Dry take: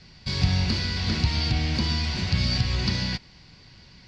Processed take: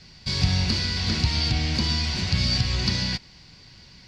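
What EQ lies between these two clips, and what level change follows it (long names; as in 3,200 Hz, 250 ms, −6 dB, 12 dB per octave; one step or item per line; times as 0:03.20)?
high-shelf EQ 6,500 Hz +11 dB
0.0 dB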